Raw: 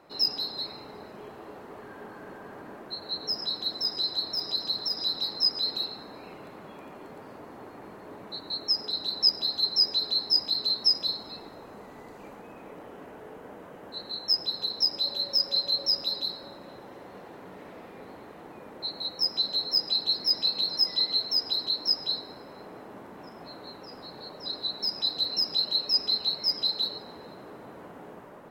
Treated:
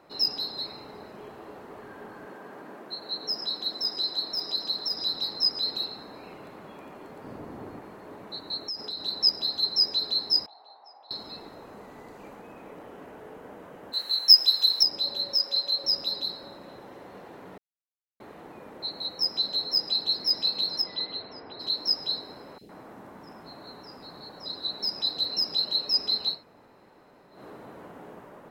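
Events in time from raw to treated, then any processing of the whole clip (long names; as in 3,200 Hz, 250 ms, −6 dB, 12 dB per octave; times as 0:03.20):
0:02.26–0:04.92: high-pass filter 170 Hz
0:07.24–0:07.79: low-shelf EQ 310 Hz +10.5 dB
0:08.60–0:09.05: downward compressor 5 to 1, threshold −31 dBFS
0:10.46–0:11.11: four-pole ladder band-pass 840 Hz, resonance 75%
0:13.93–0:14.83: spectral tilt +4.5 dB per octave
0:15.34–0:15.84: high-pass filter 460 Hz 6 dB per octave
0:17.58–0:18.20: silence
0:20.81–0:21.59: low-pass filter 4,200 Hz → 2,300 Hz 24 dB per octave
0:22.58–0:24.65: three-band delay without the direct sound highs, lows, mids 30/110 ms, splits 470/2,900 Hz
0:26.36–0:27.36: fill with room tone, crossfade 0.16 s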